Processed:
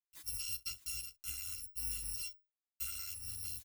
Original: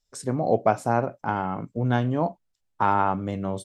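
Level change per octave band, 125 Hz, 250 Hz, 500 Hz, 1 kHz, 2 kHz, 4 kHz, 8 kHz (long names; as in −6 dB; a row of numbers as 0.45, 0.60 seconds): −27.5 dB, below −40 dB, below −40 dB, below −40 dB, −17.5 dB, +2.0 dB, can't be measured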